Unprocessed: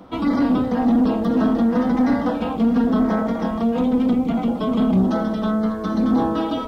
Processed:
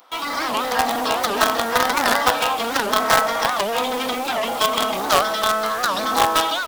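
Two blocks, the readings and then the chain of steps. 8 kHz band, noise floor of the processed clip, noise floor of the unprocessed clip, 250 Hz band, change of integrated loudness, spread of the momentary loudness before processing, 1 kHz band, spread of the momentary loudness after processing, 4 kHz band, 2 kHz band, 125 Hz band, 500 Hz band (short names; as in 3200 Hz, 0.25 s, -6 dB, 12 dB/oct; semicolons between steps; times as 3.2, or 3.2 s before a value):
n/a, -26 dBFS, -27 dBFS, -15.0 dB, 0.0 dB, 4 LU, +8.5 dB, 5 LU, +17.0 dB, +13.5 dB, -13.5 dB, +2.0 dB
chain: HPF 750 Hz 12 dB/oct; tilt +3 dB/oct; AGC gain up to 9 dB; in parallel at -4.5 dB: companded quantiser 2-bit; on the sum: record warp 78 rpm, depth 250 cents; gain -1.5 dB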